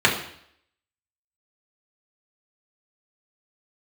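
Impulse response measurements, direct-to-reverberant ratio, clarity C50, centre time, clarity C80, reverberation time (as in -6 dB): -3.5 dB, 8.0 dB, 24 ms, 11.0 dB, 0.65 s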